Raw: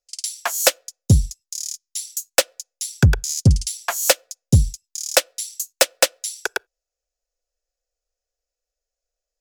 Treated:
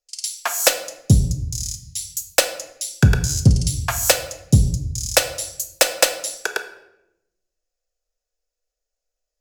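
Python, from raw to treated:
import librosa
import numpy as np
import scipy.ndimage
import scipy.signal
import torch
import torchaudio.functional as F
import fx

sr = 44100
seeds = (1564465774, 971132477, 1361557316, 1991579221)

y = fx.room_shoebox(x, sr, seeds[0], volume_m3=270.0, walls='mixed', distance_m=0.52)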